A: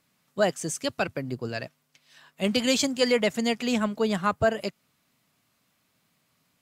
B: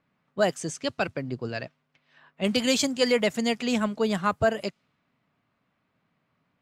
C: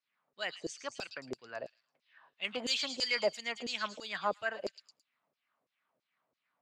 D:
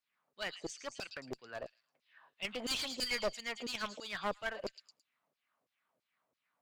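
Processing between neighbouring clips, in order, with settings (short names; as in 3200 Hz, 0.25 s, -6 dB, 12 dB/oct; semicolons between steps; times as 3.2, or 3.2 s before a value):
low-pass opened by the level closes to 2000 Hz, open at -21 dBFS
LFO band-pass saw down 3 Hz 420–6200 Hz; delay with a stepping band-pass 0.11 s, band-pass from 4200 Hz, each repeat 0.7 oct, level -5 dB
one-sided clip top -38 dBFS; gain -1 dB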